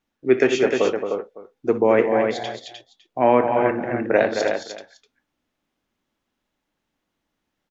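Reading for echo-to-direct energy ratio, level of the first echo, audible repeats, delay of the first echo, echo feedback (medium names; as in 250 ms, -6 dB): -3.0 dB, -15.0 dB, 4, 62 ms, no regular repeats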